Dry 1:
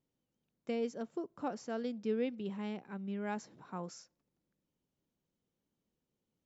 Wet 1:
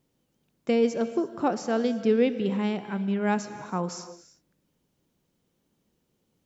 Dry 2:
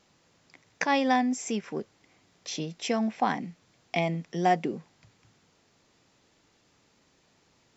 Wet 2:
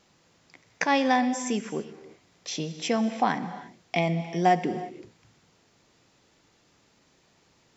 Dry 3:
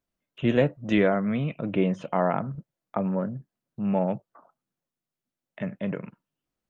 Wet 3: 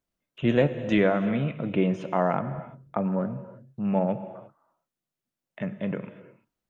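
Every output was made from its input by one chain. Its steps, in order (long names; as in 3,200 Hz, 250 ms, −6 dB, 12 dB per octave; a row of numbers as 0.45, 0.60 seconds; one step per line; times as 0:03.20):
reverb whose tail is shaped and stops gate 370 ms flat, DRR 11.5 dB
loudness normalisation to −27 LKFS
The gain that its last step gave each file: +12.5, +2.0, 0.0 decibels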